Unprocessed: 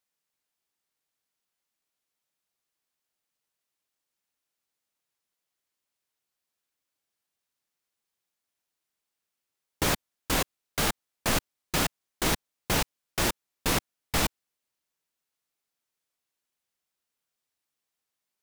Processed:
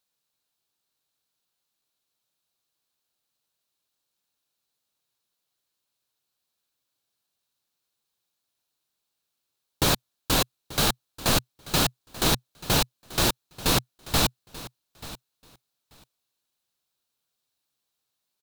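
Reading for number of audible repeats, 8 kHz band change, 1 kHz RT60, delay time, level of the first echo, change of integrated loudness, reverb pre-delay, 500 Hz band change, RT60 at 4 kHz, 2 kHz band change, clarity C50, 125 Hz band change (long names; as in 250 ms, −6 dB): 2, +3.5 dB, no reverb audible, 886 ms, −17.5 dB, +4.0 dB, no reverb audible, +3.0 dB, no reverb audible, +1.0 dB, no reverb audible, +5.0 dB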